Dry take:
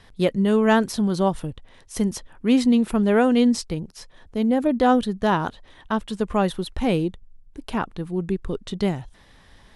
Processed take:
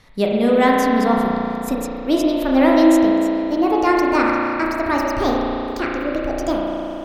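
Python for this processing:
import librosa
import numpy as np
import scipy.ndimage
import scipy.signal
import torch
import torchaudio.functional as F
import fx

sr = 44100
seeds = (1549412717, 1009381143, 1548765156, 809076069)

y = fx.speed_glide(x, sr, from_pct=110, to_pct=167)
y = fx.rev_spring(y, sr, rt60_s=3.1, pass_ms=(34,), chirp_ms=35, drr_db=-3.0)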